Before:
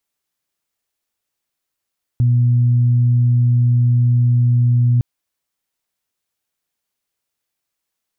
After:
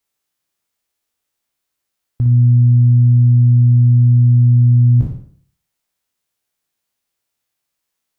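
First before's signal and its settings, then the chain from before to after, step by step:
steady additive tone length 2.81 s, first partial 121 Hz, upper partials -18.5 dB, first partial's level -10.5 dB
spectral sustain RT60 0.51 s; on a send: flutter echo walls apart 9.9 m, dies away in 0.41 s

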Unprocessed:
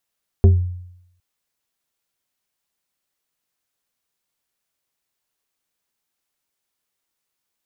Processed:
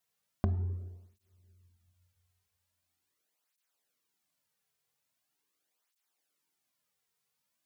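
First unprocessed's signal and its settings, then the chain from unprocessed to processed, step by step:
FM tone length 0.76 s, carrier 89.4 Hz, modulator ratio 3.34, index 0.63, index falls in 0.34 s exponential, decay 0.78 s, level -5 dB
compression, threshold -23 dBFS; simulated room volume 940 m³, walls mixed, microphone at 0.48 m; cancelling through-zero flanger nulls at 0.42 Hz, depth 3.6 ms

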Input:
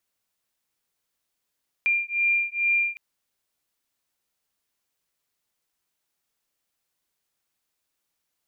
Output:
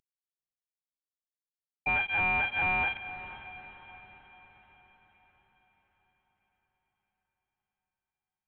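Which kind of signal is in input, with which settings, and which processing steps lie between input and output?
beating tones 2.39 kHz, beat 2.3 Hz, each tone -24 dBFS 1.11 s
CVSD coder 16 kbps; echo that smears into a reverb 509 ms, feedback 53%, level -13 dB

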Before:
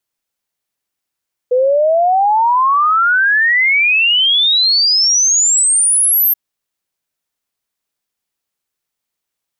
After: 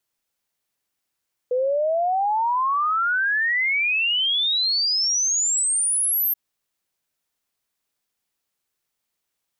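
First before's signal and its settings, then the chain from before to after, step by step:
log sweep 490 Hz -> 13 kHz 4.83 s -9 dBFS
peak limiter -18.5 dBFS

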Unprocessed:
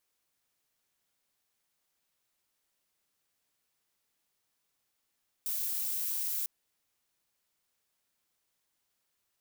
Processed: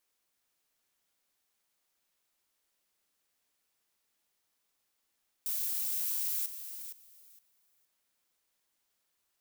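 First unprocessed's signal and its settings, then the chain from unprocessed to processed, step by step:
noise violet, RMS -33.5 dBFS 1.00 s
peaking EQ 120 Hz -7.5 dB 0.66 oct; thinning echo 464 ms, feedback 18%, level -10 dB

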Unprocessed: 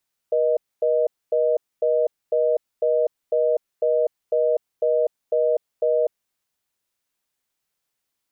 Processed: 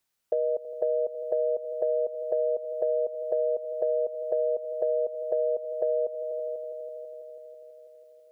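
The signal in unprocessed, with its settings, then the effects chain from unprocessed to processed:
call progress tone reorder tone, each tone -19.5 dBFS 5.80 s
multi-head delay 164 ms, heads all three, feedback 62%, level -19.5 dB; compression 5:1, threshold -24 dBFS

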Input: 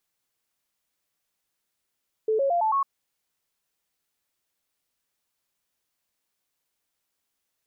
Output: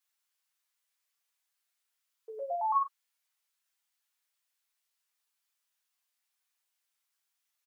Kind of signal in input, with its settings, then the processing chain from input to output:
stepped sine 437 Hz up, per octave 3, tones 5, 0.11 s, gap 0.00 s -20 dBFS
high-pass 1 kHz 12 dB/octave; chorus voices 6, 0.64 Hz, delay 12 ms, depth 3.8 ms; doubling 39 ms -8.5 dB

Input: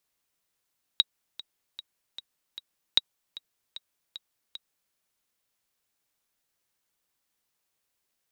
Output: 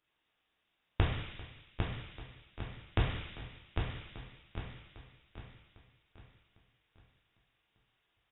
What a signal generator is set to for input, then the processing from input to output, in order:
metronome 152 bpm, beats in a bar 5, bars 2, 3.82 kHz, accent 19 dB -6.5 dBFS
on a send: feedback delay 802 ms, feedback 41%, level -5 dB; on the sum: plate-style reverb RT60 1.8 s, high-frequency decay 0.45×, DRR -6 dB; frequency inversion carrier 3.7 kHz

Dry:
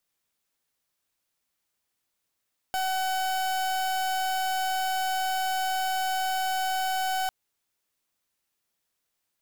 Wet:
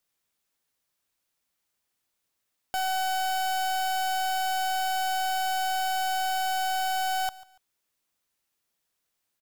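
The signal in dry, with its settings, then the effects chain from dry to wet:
pulse 754 Hz, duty 37% -27.5 dBFS 4.55 s
feedback delay 143 ms, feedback 28%, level -20 dB

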